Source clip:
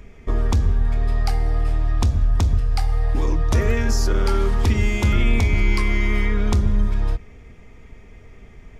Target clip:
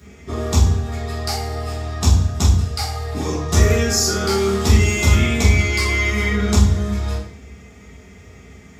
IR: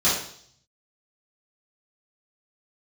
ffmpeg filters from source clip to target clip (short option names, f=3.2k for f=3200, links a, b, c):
-filter_complex "[0:a]crystalizer=i=2.5:c=0[a];[1:a]atrim=start_sample=2205,asetrate=48510,aresample=44100[b];[a][b]afir=irnorm=-1:irlink=0,volume=-12dB"